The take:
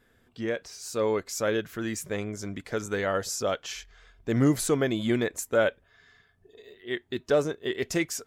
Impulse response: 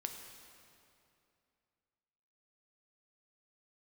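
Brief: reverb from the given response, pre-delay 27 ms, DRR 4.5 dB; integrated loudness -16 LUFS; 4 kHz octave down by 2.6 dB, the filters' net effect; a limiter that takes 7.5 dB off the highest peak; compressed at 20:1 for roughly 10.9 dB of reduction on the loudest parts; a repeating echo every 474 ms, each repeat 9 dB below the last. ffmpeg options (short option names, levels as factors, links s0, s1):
-filter_complex "[0:a]equalizer=f=4000:t=o:g=-3.5,acompressor=threshold=0.0398:ratio=20,alimiter=level_in=1.33:limit=0.0631:level=0:latency=1,volume=0.75,aecho=1:1:474|948|1422|1896:0.355|0.124|0.0435|0.0152,asplit=2[s0][s1];[1:a]atrim=start_sample=2205,adelay=27[s2];[s1][s2]afir=irnorm=-1:irlink=0,volume=0.668[s3];[s0][s3]amix=inputs=2:normalize=0,volume=9.44"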